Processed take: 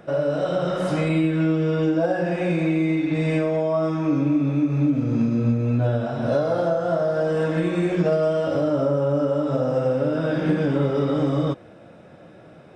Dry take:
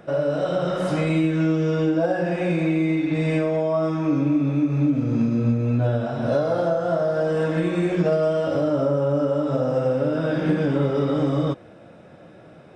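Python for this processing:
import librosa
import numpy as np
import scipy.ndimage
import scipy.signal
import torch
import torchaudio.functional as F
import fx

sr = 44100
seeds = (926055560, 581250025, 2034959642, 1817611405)

y = fx.peak_eq(x, sr, hz=6200.0, db=-14.5, octaves=0.24, at=(1.08, 1.83))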